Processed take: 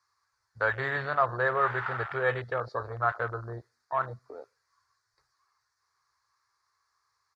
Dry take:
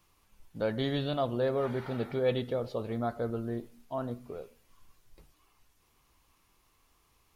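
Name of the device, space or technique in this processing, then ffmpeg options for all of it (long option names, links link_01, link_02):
over-cleaned archive recording: -af "highpass=140,lowpass=5000,firequalizer=gain_entry='entry(120,0);entry(190,-30);entry(390,-8);entry(610,-6);entry(1100,9);entry(1700,12);entry(2900,-16);entry(4400,12);entry(9000,8)':delay=0.05:min_phase=1,afwtdn=0.0112,volume=6dB"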